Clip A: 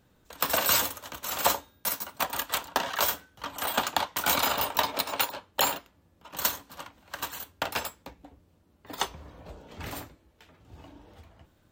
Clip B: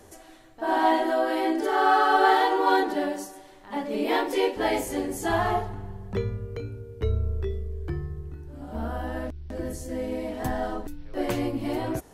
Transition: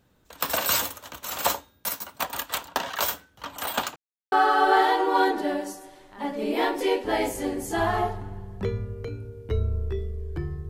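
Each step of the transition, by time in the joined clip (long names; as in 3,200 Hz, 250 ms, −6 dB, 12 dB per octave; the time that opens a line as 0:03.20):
clip A
0:03.96–0:04.32: silence
0:04.32: continue with clip B from 0:01.84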